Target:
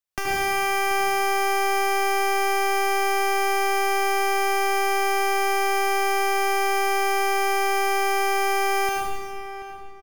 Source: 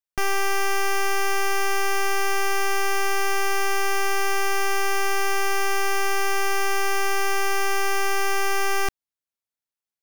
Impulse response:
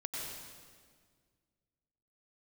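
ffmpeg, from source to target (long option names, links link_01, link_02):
-filter_complex "[0:a]acrossover=split=240|730[link_01][link_02][link_03];[link_01]acompressor=threshold=-35dB:ratio=4[link_04];[link_02]acompressor=threshold=-38dB:ratio=4[link_05];[link_03]acompressor=threshold=-29dB:ratio=4[link_06];[link_04][link_05][link_06]amix=inputs=3:normalize=0,asplit=2[link_07][link_08];[link_08]adelay=733,lowpass=frequency=2400:poles=1,volume=-11.5dB,asplit=2[link_09][link_10];[link_10]adelay=733,lowpass=frequency=2400:poles=1,volume=0.28,asplit=2[link_11][link_12];[link_12]adelay=733,lowpass=frequency=2400:poles=1,volume=0.28[link_13];[link_07][link_09][link_11][link_13]amix=inputs=4:normalize=0[link_14];[1:a]atrim=start_sample=2205,asetrate=52920,aresample=44100[link_15];[link_14][link_15]afir=irnorm=-1:irlink=0,volume=6.5dB"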